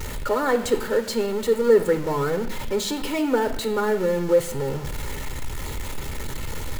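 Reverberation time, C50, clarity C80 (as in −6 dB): 0.80 s, 12.5 dB, 14.5 dB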